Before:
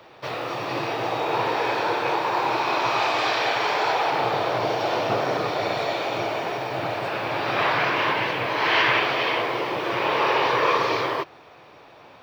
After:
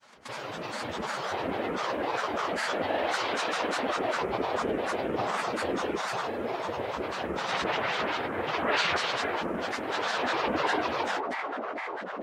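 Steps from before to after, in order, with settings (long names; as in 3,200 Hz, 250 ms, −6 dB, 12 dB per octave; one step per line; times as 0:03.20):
delay with a band-pass on its return 550 ms, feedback 71%, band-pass 620 Hz, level −4.5 dB
granular cloud, grains 20 per second, pitch spread up and down by 12 semitones
level −6.5 dB
Ogg Vorbis 48 kbit/s 48,000 Hz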